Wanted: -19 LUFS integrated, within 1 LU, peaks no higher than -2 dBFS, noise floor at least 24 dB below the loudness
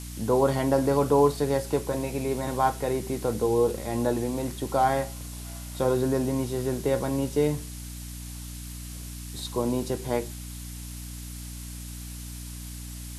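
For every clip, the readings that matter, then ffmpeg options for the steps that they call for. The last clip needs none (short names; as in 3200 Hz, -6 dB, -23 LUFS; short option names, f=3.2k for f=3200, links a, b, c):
hum 60 Hz; harmonics up to 300 Hz; hum level -36 dBFS; noise floor -39 dBFS; noise floor target -51 dBFS; loudness -26.5 LUFS; peak -8.0 dBFS; loudness target -19.0 LUFS
-> -af "bandreject=f=60:t=h:w=6,bandreject=f=120:t=h:w=6,bandreject=f=180:t=h:w=6,bandreject=f=240:t=h:w=6,bandreject=f=300:t=h:w=6"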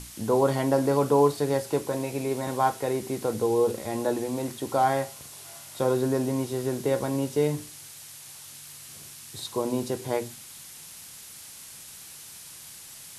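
hum none; noise floor -45 dBFS; noise floor target -51 dBFS
-> -af "afftdn=nr=6:nf=-45"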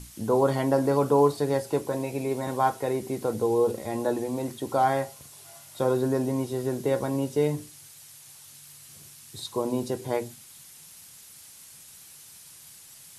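noise floor -49 dBFS; noise floor target -51 dBFS
-> -af "afftdn=nr=6:nf=-49"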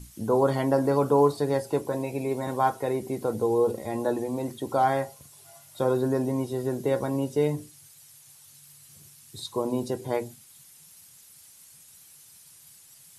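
noise floor -53 dBFS; loudness -27.0 LUFS; peak -8.5 dBFS; loudness target -19.0 LUFS
-> -af "volume=8dB,alimiter=limit=-2dB:level=0:latency=1"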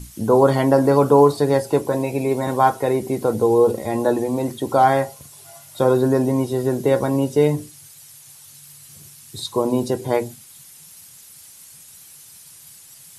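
loudness -19.0 LUFS; peak -2.0 dBFS; noise floor -45 dBFS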